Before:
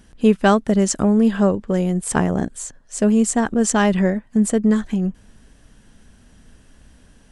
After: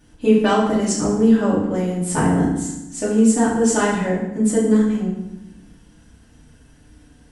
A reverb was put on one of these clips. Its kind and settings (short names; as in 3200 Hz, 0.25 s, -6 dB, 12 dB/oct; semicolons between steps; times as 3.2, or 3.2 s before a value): FDN reverb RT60 0.89 s, low-frequency decay 1.5×, high-frequency decay 0.8×, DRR -8 dB; gain -8.5 dB